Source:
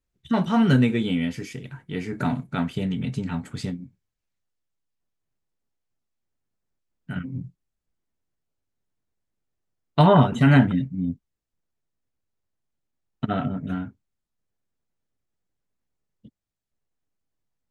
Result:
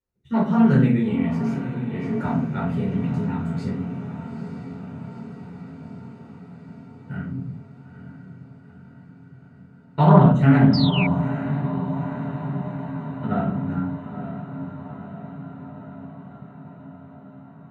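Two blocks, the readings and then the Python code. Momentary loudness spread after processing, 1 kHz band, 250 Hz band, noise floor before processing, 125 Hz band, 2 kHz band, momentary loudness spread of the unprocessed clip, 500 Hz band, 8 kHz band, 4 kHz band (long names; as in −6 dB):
24 LU, +1.5 dB, +3.5 dB, −82 dBFS, +4.0 dB, −1.0 dB, 19 LU, +1.0 dB, can't be measured, +1.5 dB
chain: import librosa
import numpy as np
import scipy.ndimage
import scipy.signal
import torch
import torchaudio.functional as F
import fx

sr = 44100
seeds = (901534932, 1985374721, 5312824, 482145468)

y = fx.echo_diffused(x, sr, ms=897, feedback_pct=67, wet_db=-10)
y = fx.room_shoebox(y, sr, seeds[0], volume_m3=400.0, walls='furnished', distance_m=4.6)
y = fx.spec_paint(y, sr, seeds[1], shape='fall', start_s=10.73, length_s=0.34, low_hz=2200.0, high_hz=5200.0, level_db=-14.0)
y = scipy.signal.sosfilt(scipy.signal.butter(2, 51.0, 'highpass', fs=sr, output='sos'), y)
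y = fx.high_shelf(y, sr, hz=2200.0, db=-9.0)
y = fx.notch(y, sr, hz=3300.0, q=6.2)
y = fx.doppler_dist(y, sr, depth_ms=0.2)
y = y * 10.0 ** (-7.0 / 20.0)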